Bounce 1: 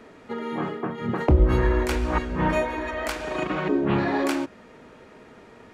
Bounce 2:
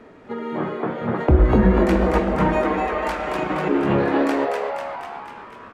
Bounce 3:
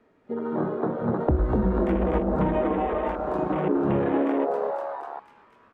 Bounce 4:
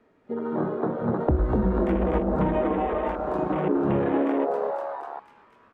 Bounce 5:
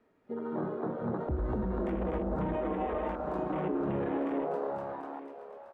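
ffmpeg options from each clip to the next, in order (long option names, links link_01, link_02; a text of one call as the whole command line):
ffmpeg -i in.wav -filter_complex "[0:a]highshelf=frequency=3100:gain=-10.5,asplit=9[link_01][link_02][link_03][link_04][link_05][link_06][link_07][link_08][link_09];[link_02]adelay=247,afreqshift=140,volume=-4dB[link_10];[link_03]adelay=494,afreqshift=280,volume=-8.6dB[link_11];[link_04]adelay=741,afreqshift=420,volume=-13.2dB[link_12];[link_05]adelay=988,afreqshift=560,volume=-17.7dB[link_13];[link_06]adelay=1235,afreqshift=700,volume=-22.3dB[link_14];[link_07]adelay=1482,afreqshift=840,volume=-26.9dB[link_15];[link_08]adelay=1729,afreqshift=980,volume=-31.5dB[link_16];[link_09]adelay=1976,afreqshift=1120,volume=-36.1dB[link_17];[link_01][link_10][link_11][link_12][link_13][link_14][link_15][link_16][link_17]amix=inputs=9:normalize=0,volume=2.5dB" out.wav
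ffmpeg -i in.wav -filter_complex "[0:a]afwtdn=0.0447,acrossover=split=860|2300[link_01][link_02][link_03];[link_01]acompressor=threshold=-20dB:ratio=4[link_04];[link_02]acompressor=threshold=-40dB:ratio=4[link_05];[link_03]acompressor=threshold=-52dB:ratio=4[link_06];[link_04][link_05][link_06]amix=inputs=3:normalize=0" out.wav
ffmpeg -i in.wav -af anull out.wav
ffmpeg -i in.wav -af "alimiter=limit=-17dB:level=0:latency=1:release=33,aecho=1:1:874:0.224,volume=-7dB" out.wav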